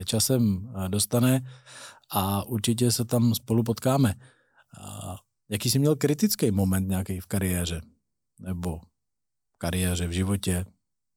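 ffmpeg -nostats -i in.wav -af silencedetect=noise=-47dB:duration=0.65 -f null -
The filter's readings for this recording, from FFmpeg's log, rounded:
silence_start: 8.84
silence_end: 9.61 | silence_duration: 0.77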